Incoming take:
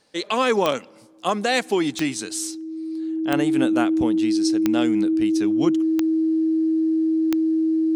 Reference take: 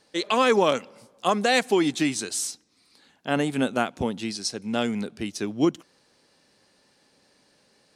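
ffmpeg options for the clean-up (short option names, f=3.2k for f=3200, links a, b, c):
-af "adeclick=t=4,bandreject=f=320:w=30"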